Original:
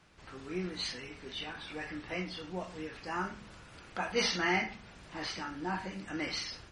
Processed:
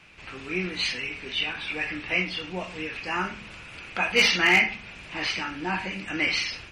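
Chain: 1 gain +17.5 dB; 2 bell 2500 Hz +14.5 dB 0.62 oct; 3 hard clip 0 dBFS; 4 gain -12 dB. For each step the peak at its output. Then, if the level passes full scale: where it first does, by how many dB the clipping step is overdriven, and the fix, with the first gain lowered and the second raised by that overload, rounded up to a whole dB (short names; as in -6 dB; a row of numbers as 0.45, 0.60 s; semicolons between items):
-0.5, +5.0, 0.0, -12.0 dBFS; step 2, 5.0 dB; step 1 +12.5 dB, step 4 -7 dB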